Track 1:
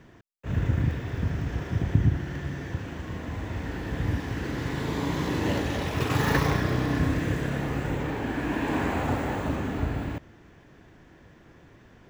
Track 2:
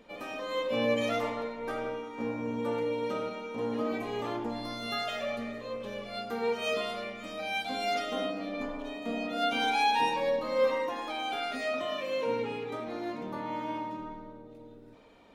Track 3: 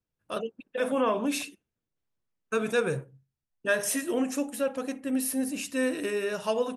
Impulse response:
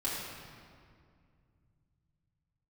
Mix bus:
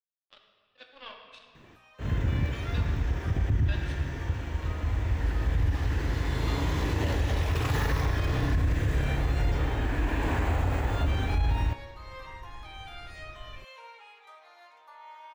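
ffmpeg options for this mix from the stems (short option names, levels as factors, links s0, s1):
-filter_complex "[0:a]asubboost=boost=12:cutoff=56,bandreject=f=61.67:t=h:w=4,bandreject=f=123.34:t=h:w=4,bandreject=f=185.01:t=h:w=4,bandreject=f=246.68:t=h:w=4,bandreject=f=308.35:t=h:w=4,bandreject=f=370.02:t=h:w=4,bandreject=f=431.69:t=h:w=4,bandreject=f=493.36:t=h:w=4,bandreject=f=555.03:t=h:w=4,bandreject=f=616.7:t=h:w=4,bandreject=f=678.37:t=h:w=4,bandreject=f=740.04:t=h:w=4,bandreject=f=801.71:t=h:w=4,bandreject=f=863.38:t=h:w=4,bandreject=f=925.05:t=h:w=4,bandreject=f=986.72:t=h:w=4,bandreject=f=1048.39:t=h:w=4,bandreject=f=1110.06:t=h:w=4,bandreject=f=1171.73:t=h:w=4,bandreject=f=1233.4:t=h:w=4,bandreject=f=1295.07:t=h:w=4,bandreject=f=1356.74:t=h:w=4,bandreject=f=1418.41:t=h:w=4,bandreject=f=1480.08:t=h:w=4,bandreject=f=1541.75:t=h:w=4,bandreject=f=1603.42:t=h:w=4,bandreject=f=1665.09:t=h:w=4,bandreject=f=1726.76:t=h:w=4,bandreject=f=1788.43:t=h:w=4,bandreject=f=1850.1:t=h:w=4,adelay=1550,volume=0.891[s0];[1:a]highpass=f=810:w=0.5412,highpass=f=810:w=1.3066,dynaudnorm=f=100:g=11:m=3.16,adelay=1550,volume=0.112[s1];[2:a]highpass=760,aeval=exprs='0.211*(cos(1*acos(clip(val(0)/0.211,-1,1)))-cos(1*PI/2))+0.0299*(cos(7*acos(clip(val(0)/0.211,-1,1)))-cos(7*PI/2))':c=same,lowpass=f=3600:t=q:w=2.6,volume=0.141,asplit=2[s2][s3];[s3]volume=0.668[s4];[3:a]atrim=start_sample=2205[s5];[s4][s5]afir=irnorm=-1:irlink=0[s6];[s0][s1][s2][s6]amix=inputs=4:normalize=0,alimiter=limit=0.126:level=0:latency=1:release=44"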